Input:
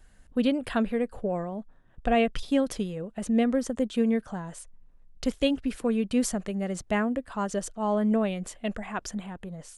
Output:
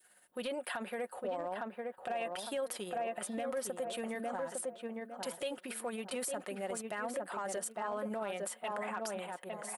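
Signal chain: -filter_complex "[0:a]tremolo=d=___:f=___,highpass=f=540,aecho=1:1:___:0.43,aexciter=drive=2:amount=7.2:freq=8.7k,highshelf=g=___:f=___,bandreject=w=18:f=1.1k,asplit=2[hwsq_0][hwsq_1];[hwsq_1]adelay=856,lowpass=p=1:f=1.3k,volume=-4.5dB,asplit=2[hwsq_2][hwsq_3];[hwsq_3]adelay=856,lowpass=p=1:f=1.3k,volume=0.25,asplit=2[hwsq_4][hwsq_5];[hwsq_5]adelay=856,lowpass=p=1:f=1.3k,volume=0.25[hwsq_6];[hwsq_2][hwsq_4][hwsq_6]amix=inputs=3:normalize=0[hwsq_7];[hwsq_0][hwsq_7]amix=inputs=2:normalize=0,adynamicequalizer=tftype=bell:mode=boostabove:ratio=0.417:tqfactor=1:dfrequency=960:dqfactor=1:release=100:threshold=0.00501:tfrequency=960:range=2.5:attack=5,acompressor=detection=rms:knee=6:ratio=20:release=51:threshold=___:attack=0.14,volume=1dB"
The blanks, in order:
0.45, 17, 5.5, -5, 5.8k, -31dB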